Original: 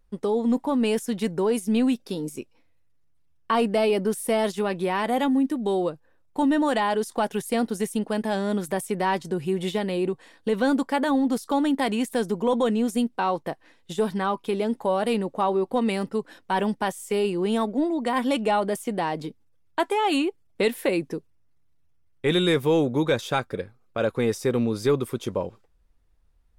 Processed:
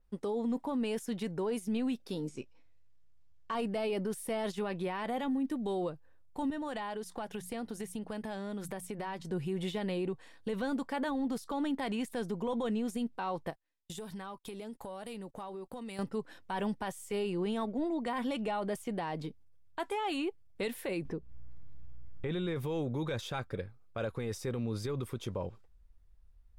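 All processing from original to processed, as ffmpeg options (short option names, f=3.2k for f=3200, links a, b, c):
-filter_complex "[0:a]asettb=1/sr,asplit=3[a][b][c];[a]atrim=end=2.284[d];[b]atrim=start=2.28:end=3.55,asetpts=PTS-STARTPTS,afade=t=in:d=0.004:c=qsin,afade=t=out:st=1.266:d=0.004:c=qsin,acrusher=bits=6:mode=log:mix=0:aa=0.000001,lowpass=f=7.6k:w=0.5412,lowpass=f=7.6k:w=1.3066,asplit=2[e][f];[f]adelay=16,volume=-11dB[g];[e][g]amix=inputs=2:normalize=0,atrim=end_sample=56007[h];[c]atrim=start=3.546[i];[d][h]acrossfade=d=0.004:c1=hsin:c2=qsin[j];[j][i]acrossfade=d=0.004:c1=qsin:c2=hsin,asettb=1/sr,asplit=3[k][l][m];[k]atrim=end=6.504[n];[l]atrim=start=6.5:end=9.27,asetpts=PTS-STARTPTS,afade=t=in:d=0.004:c=qsin,afade=t=out:st=2.766:d=0.004:c=qsin,bandreject=f=60:t=h:w=6,bandreject=f=120:t=h:w=6,bandreject=f=180:t=h:w=6,acompressor=threshold=-29dB:ratio=4:attack=3.2:release=140:knee=1:detection=peak[o];[m]atrim=start=9.266[p];[n][o]acrossfade=d=0.004:c1=hsin:c2=qsin[q];[q][p]acrossfade=d=0.004:c1=qsin:c2=hsin,asettb=1/sr,asplit=3[r][s][t];[r]atrim=end=13.504[u];[s]atrim=start=13.5:end=15.99,asetpts=PTS-STARTPTS,afade=t=in:d=0.004:c=qsin,afade=t=out:st=2.486:d=0.004:c=qsin,highshelf=f=5.3k:g=10,acompressor=threshold=-34dB:ratio=5:attack=3.2:release=140:knee=1:detection=peak,agate=range=-30dB:threshold=-46dB:ratio=16:release=100:detection=peak[v];[t]atrim=start=15.986[w];[u][v]acrossfade=d=0.004:c1=hsin:c2=qsin[x];[x][w]acrossfade=d=0.004:c1=qsin:c2=hsin,asettb=1/sr,asplit=3[y][z][aa];[y]atrim=end=21.054[ab];[z]atrim=start=21.05:end=22.56,asetpts=PTS-STARTPTS,afade=t=in:d=0.004:c=qsin,afade=t=out:st=1.506:d=0.004:c=qsin,lowpass=f=1.5k:p=1,acompressor=mode=upward:threshold=-29dB:ratio=2.5:attack=3.2:release=140:knee=2.83:detection=peak,aeval=exprs='val(0)+0.001*(sin(2*PI*60*n/s)+sin(2*PI*2*60*n/s)/2+sin(2*PI*3*60*n/s)/3+sin(2*PI*4*60*n/s)/4+sin(2*PI*5*60*n/s)/5)':c=same[ac];[aa]atrim=start=22.556[ad];[ab][ac]acrossfade=d=0.004:c1=hsin:c2=qsin[ae];[ae][ad]acrossfade=d=0.004:c1=qsin:c2=hsin,asubboost=boost=2.5:cutoff=140,alimiter=limit=-21dB:level=0:latency=1:release=42,adynamicequalizer=threshold=0.00282:dfrequency=5400:dqfactor=0.7:tfrequency=5400:tqfactor=0.7:attack=5:release=100:ratio=0.375:range=3:mode=cutabove:tftype=highshelf,volume=-6dB"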